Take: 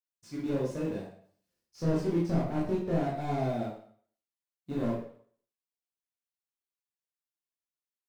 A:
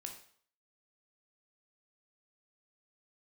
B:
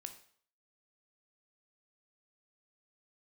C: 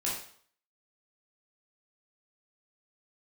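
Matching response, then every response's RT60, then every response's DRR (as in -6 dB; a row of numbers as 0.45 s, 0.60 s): C; 0.55 s, 0.55 s, 0.55 s; 3.0 dB, 7.0 dB, -6.0 dB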